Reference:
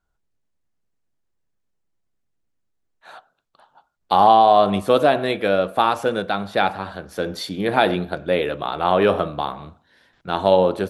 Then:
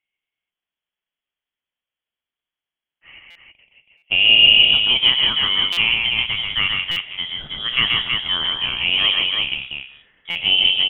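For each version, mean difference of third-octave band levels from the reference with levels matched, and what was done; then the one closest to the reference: 11.5 dB: high-pass 340 Hz 12 dB/octave; on a send: multi-tap echo 130/162/325 ms -3.5/-10/-4 dB; on the sum: frequency inversion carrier 3.6 kHz; buffer glitch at 3.30/3.97/5.72/6.91/10.30 s, samples 256, times 8; trim -1.5 dB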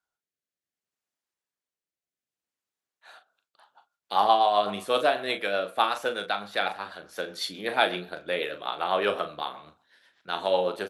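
5.0 dB: high-pass 1.2 kHz 6 dB/octave; rotary cabinet horn 0.65 Hz, later 8 Hz, at 3.01 s; wow and flutter 26 cents; doubling 39 ms -9.5 dB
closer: second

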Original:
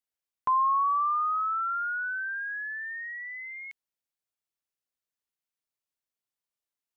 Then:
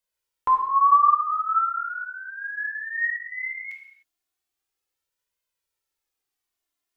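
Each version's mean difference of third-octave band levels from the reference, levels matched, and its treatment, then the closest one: 1.0 dB: flange 0.37 Hz, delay 1.9 ms, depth 1 ms, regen +1%; gated-style reverb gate 330 ms falling, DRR 0.5 dB; trim +8 dB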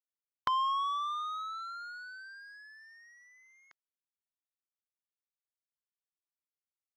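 4.0 dB: spectral levelling over time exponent 0.6; power-law waveshaper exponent 2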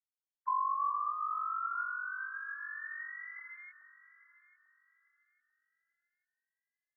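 2.5 dB: formants replaced by sine waves; on a send: echo whose repeats swap between lows and highs 422 ms, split 1.1 kHz, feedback 54%, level -11.5 dB; on the sum: trim -8 dB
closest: first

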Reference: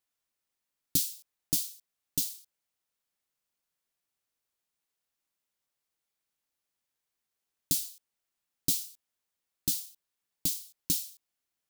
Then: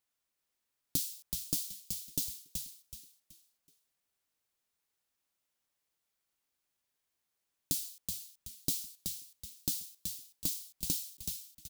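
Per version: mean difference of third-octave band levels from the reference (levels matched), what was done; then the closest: 2.5 dB: compression 2:1, threshold -33 dBFS, peak gain reduction 6.5 dB; frequency-shifting echo 376 ms, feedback 32%, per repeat -110 Hz, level -5 dB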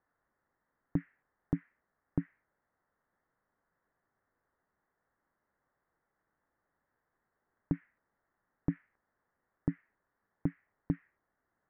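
17.0 dB: steep low-pass 1.9 kHz 72 dB/octave; peak limiter -29.5 dBFS, peak gain reduction 8.5 dB; trim +13 dB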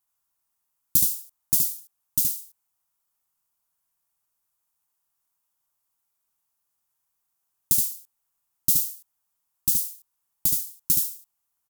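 5.5 dB: ten-band graphic EQ 250 Hz -6 dB, 500 Hz -8 dB, 1 kHz +6 dB, 2 kHz -7 dB, 4 kHz -7 dB, 16 kHz +6 dB; on a send: delay 72 ms -3.5 dB; on the sum: trim +4 dB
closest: first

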